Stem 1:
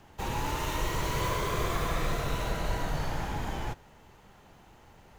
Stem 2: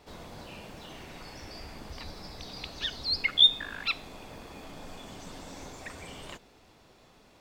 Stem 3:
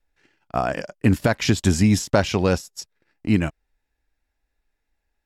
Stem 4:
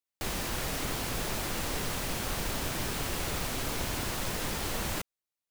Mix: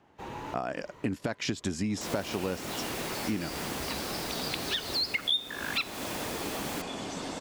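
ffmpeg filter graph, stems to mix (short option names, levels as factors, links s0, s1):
-filter_complex "[0:a]lowpass=f=2500:p=1,volume=0.531[s0];[1:a]lowpass=f=11000:w=0.5412,lowpass=f=11000:w=1.3066,acontrast=51,adelay=1900,volume=1.26[s1];[2:a]lowpass=9100,volume=0.562,asplit=2[s2][s3];[3:a]adelay=1800,volume=0.75[s4];[s3]apad=whole_len=228595[s5];[s0][s5]sidechaincompress=threshold=0.0112:ratio=6:attack=6.5:release=1040[s6];[s6][s1][s2][s4]amix=inputs=4:normalize=0,highpass=f=190:p=1,equalizer=f=300:t=o:w=1.2:g=3.5,acompressor=threshold=0.0355:ratio=4"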